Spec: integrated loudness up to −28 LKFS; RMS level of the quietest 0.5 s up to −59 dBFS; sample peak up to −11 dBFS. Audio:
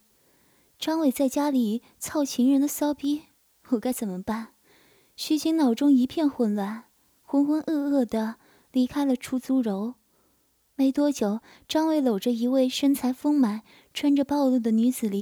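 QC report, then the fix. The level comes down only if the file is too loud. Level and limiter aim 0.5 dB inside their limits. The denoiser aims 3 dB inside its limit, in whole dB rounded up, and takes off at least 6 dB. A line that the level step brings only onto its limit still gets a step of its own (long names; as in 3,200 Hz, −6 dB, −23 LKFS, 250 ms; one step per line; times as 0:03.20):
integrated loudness −25.0 LKFS: out of spec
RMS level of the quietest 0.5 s −67 dBFS: in spec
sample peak −11.5 dBFS: in spec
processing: level −3.5 dB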